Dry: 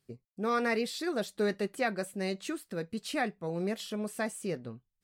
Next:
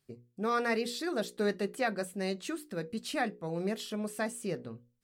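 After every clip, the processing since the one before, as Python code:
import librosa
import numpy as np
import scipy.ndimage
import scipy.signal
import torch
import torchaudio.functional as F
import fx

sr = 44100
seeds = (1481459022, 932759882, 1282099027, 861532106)

y = fx.hum_notches(x, sr, base_hz=60, count=9)
y = fx.dynamic_eq(y, sr, hz=2200.0, q=6.4, threshold_db=-53.0, ratio=4.0, max_db=-4)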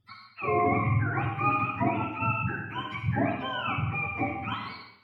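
y = fx.octave_mirror(x, sr, pivot_hz=710.0)
y = fx.rev_freeverb(y, sr, rt60_s=0.83, hf_ratio=0.95, predelay_ms=10, drr_db=1.5)
y = y * 10.0 ** (4.5 / 20.0)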